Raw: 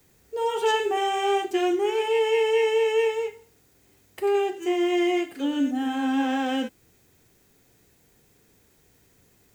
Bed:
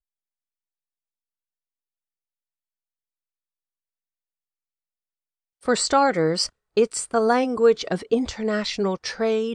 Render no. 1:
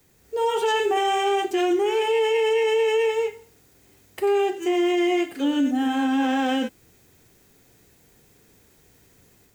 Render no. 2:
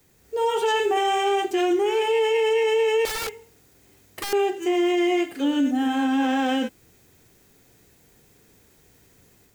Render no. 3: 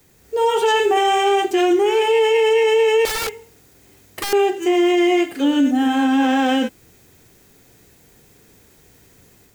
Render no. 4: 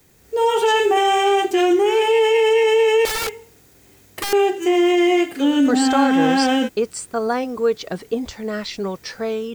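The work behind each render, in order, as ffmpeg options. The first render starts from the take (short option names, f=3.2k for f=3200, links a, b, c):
-af "alimiter=limit=-19dB:level=0:latency=1:release=16,dynaudnorm=f=160:g=3:m=4dB"
-filter_complex "[0:a]asettb=1/sr,asplit=3[a][b][c];[a]atrim=end=3.054[d];[b]atrim=start=3.05:end=4.33,asetpts=PTS-STARTPTS,afade=t=in:d=0.004:c=qsin,afade=t=out:st=1.276:d=0.004:c=qsin,aeval=exprs='(mod(15.8*val(0)+1,2)-1)/15.8':c=same[e];[c]atrim=start=4.326[f];[d][e]acrossfade=d=0.004:c1=hsin:c2=qsin[g];[g][f]acrossfade=d=0.004:c1=qsin:c2=hsin"
-af "volume=5.5dB"
-filter_complex "[1:a]volume=-2dB[a];[0:a][a]amix=inputs=2:normalize=0"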